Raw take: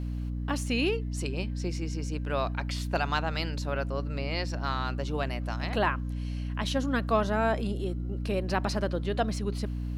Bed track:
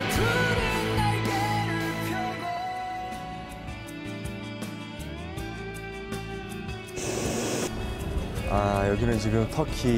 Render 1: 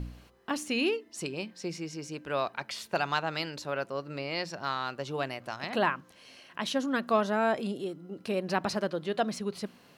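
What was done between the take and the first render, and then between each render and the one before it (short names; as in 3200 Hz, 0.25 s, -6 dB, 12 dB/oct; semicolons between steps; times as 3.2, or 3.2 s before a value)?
de-hum 60 Hz, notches 5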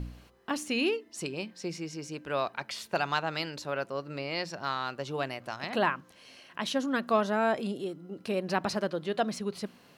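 nothing audible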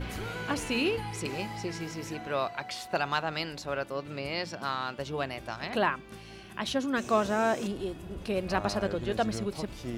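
add bed track -13 dB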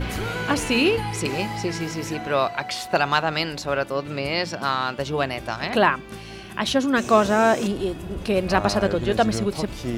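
gain +9 dB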